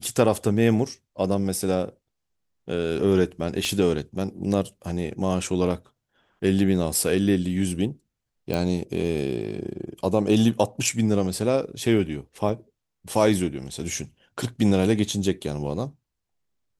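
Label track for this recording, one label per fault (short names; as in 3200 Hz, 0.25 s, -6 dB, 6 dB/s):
3.650000	3.650000	pop -15 dBFS
8.540000	8.540000	pop
12.490000	12.490000	gap 3.7 ms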